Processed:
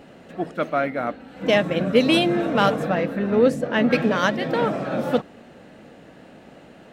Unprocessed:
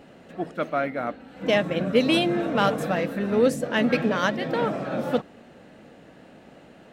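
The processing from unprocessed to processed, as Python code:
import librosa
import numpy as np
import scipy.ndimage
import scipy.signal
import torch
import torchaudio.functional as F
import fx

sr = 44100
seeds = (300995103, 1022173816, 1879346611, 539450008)

y = fx.high_shelf(x, sr, hz=4700.0, db=-11.5, at=(2.78, 3.91))
y = F.gain(torch.from_numpy(y), 3.0).numpy()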